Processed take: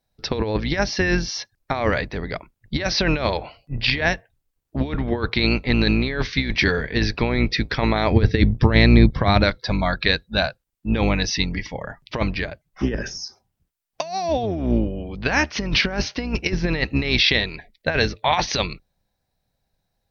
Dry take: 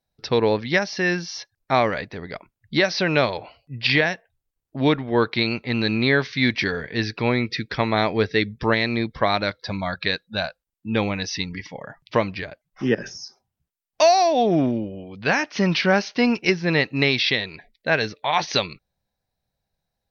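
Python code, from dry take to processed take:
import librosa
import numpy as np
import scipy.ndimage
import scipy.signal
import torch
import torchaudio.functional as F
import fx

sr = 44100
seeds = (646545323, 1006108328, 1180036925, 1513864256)

y = fx.octave_divider(x, sr, octaves=2, level_db=-1.0)
y = fx.over_compress(y, sr, threshold_db=-21.0, ratio=-0.5)
y = fx.peak_eq(y, sr, hz=92.0, db=10.0, octaves=3.0, at=(8.11, 9.44))
y = F.gain(torch.from_numpy(y), 2.0).numpy()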